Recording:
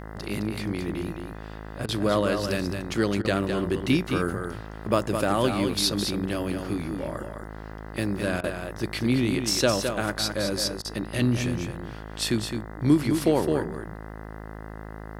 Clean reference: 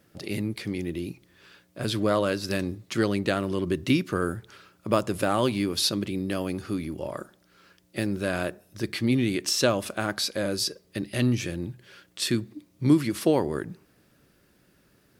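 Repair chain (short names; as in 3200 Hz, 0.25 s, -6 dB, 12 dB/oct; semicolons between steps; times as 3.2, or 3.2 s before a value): de-hum 53.4 Hz, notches 38; interpolate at 7.72, 2.8 ms; interpolate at 1.86/3.22/8.41/10.82, 26 ms; inverse comb 0.212 s -6.5 dB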